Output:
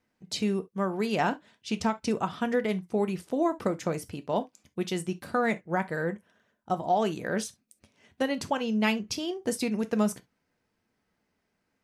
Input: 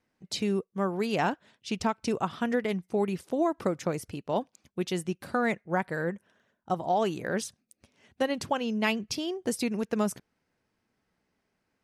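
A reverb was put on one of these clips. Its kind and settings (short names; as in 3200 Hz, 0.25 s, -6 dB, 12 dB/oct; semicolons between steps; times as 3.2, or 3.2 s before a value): non-linear reverb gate 90 ms falling, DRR 10 dB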